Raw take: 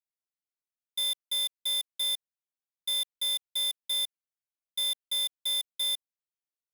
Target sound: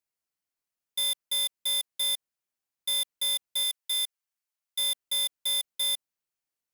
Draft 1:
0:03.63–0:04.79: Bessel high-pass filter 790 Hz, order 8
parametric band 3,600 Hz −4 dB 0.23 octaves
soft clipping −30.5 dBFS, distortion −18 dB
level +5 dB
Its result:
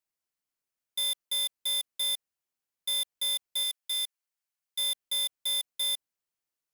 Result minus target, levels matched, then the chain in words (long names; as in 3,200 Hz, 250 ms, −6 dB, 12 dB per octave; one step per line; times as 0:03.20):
soft clipping: distortion +10 dB
0:03.63–0:04.79: Bessel high-pass filter 790 Hz, order 8
parametric band 3,600 Hz −4 dB 0.23 octaves
soft clipping −23.5 dBFS, distortion −28 dB
level +5 dB